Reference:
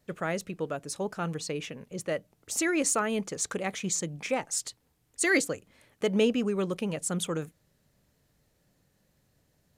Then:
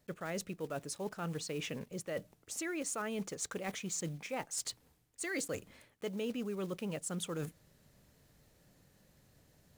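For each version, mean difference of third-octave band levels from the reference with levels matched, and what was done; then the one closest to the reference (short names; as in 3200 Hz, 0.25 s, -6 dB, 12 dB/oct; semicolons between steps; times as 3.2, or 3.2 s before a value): 5.5 dB: block floating point 5-bit; reverse; compressor 5:1, threshold -41 dBFS, peak gain reduction 18.5 dB; reverse; gain +3.5 dB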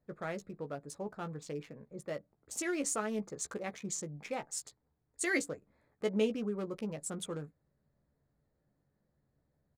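3.0 dB: Wiener smoothing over 15 samples; doubler 14 ms -7 dB; gain -8 dB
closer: second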